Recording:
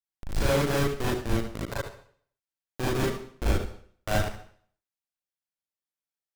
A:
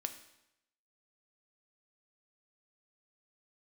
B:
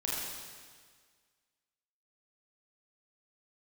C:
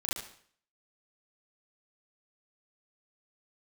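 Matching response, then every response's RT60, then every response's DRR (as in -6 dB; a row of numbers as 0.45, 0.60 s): C; 0.85 s, 1.7 s, not exponential; 7.0, -6.0, -7.5 dB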